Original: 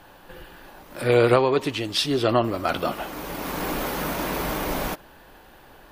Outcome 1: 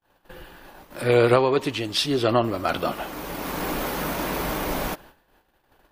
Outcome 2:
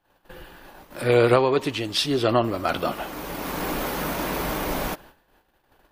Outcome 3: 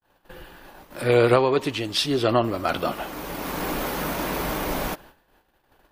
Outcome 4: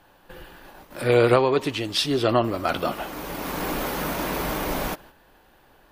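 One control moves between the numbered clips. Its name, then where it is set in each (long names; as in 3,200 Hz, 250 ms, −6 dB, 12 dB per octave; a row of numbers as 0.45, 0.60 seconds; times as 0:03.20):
noise gate, range: −39, −24, −54, −7 decibels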